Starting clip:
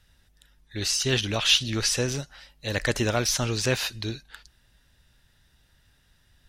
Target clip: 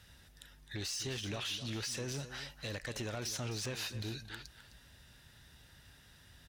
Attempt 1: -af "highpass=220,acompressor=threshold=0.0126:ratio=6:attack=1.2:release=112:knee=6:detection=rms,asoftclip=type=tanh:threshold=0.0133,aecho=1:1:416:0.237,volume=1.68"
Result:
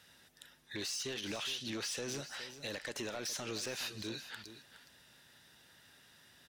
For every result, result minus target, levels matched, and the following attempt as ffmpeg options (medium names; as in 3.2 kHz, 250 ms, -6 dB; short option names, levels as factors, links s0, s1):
echo 157 ms late; 125 Hz band -10.0 dB
-af "highpass=220,acompressor=threshold=0.0126:ratio=6:attack=1.2:release=112:knee=6:detection=rms,asoftclip=type=tanh:threshold=0.0133,aecho=1:1:259:0.237,volume=1.68"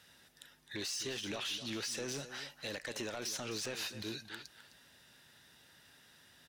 125 Hz band -9.5 dB
-af "highpass=58,acompressor=threshold=0.0126:ratio=6:attack=1.2:release=112:knee=6:detection=rms,asoftclip=type=tanh:threshold=0.0133,aecho=1:1:259:0.237,volume=1.68"